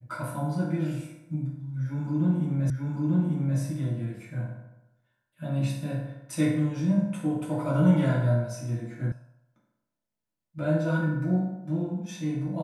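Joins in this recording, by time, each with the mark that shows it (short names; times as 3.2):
2.7 repeat of the last 0.89 s
9.12 sound cut off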